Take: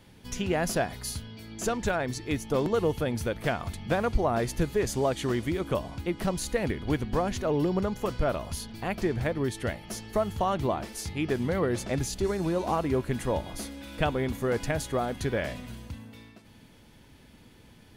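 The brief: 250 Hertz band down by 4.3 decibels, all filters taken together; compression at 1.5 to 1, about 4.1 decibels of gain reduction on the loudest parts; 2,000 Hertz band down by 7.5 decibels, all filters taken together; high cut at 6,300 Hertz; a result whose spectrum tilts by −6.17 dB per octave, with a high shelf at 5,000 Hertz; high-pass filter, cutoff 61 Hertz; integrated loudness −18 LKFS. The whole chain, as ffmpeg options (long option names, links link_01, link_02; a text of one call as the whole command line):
ffmpeg -i in.wav -af "highpass=61,lowpass=6300,equalizer=frequency=250:width_type=o:gain=-6,equalizer=frequency=2000:width_type=o:gain=-9,highshelf=frequency=5000:gain=-7,acompressor=threshold=-35dB:ratio=1.5,volume=18dB" out.wav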